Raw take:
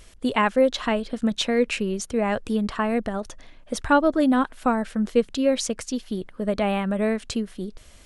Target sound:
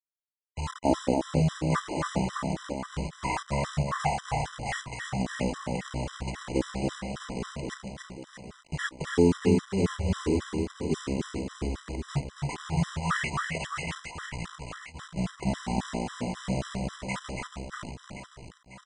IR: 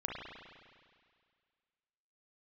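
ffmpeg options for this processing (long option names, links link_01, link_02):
-af "highpass=frequency=1100:poles=1,bandreject=frequency=7900:width=12,asetrate=31183,aresample=44100,atempo=1.41421,aeval=exprs='val(0)+0.00178*(sin(2*PI*50*n/s)+sin(2*PI*2*50*n/s)/2+sin(2*PI*3*50*n/s)/3+sin(2*PI*4*50*n/s)/4+sin(2*PI*5*50*n/s)/5)':channel_layout=same,acrusher=bits=5:mix=0:aa=0.000001,aecho=1:1:120|270|457.5|691.9|984.8:0.631|0.398|0.251|0.158|0.1,asetrate=18846,aresample=44100,afftfilt=real='re*gt(sin(2*PI*3.7*pts/sr)*(1-2*mod(floor(b*sr/1024/1000),2)),0)':imag='im*gt(sin(2*PI*3.7*pts/sr)*(1-2*mod(floor(b*sr/1024/1000),2)),0)':win_size=1024:overlap=0.75,volume=1dB"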